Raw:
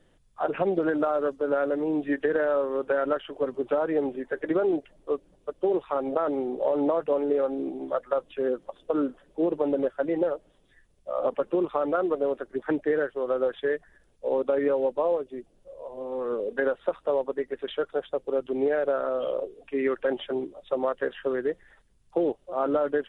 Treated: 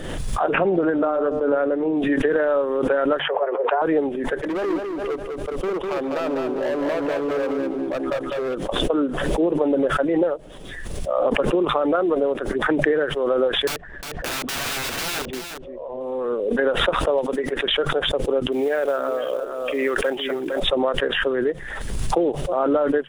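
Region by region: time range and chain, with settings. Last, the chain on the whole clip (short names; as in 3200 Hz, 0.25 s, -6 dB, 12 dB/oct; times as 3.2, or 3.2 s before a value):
0.55–1.97 LPF 2200 Hz 6 dB/oct + de-hum 150.6 Hz, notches 28
3.19–3.82 speaker cabinet 300–2200 Hz, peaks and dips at 310 Hz +6 dB, 540 Hz -3 dB, 850 Hz +4 dB + frequency shift +130 Hz
4.42–8.55 hard clip -27 dBFS + feedback echo 0.2 s, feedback 30%, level -4.5 dB
13.67–16.01 LPF 3000 Hz + wrapped overs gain 27 dB + echo 0.356 s -7.5 dB
17.18–17.66 low shelf 180 Hz -7.5 dB + three-band squash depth 100%
18.52–20.6 tilt +2 dB/oct + short-mantissa float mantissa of 4-bit + echo 0.458 s -12 dB
whole clip: de-hum 72.99 Hz, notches 2; backwards sustainer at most 31 dB/s; gain +4.5 dB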